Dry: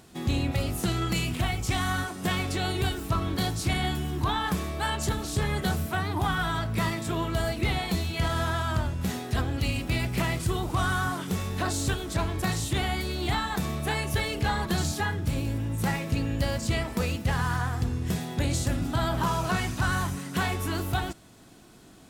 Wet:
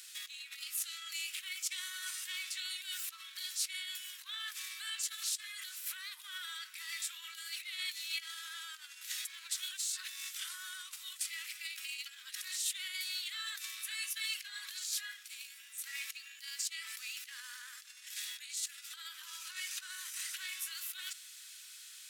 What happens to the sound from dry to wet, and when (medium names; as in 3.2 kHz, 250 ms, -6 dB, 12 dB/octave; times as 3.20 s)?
9.25–12.41 s: reverse
13.14–14.63 s: comb 6.1 ms, depth 31%
whole clip: compressor with a negative ratio -34 dBFS, ratio -1; peak limiter -25.5 dBFS; Bessel high-pass 2.8 kHz, order 8; trim +4 dB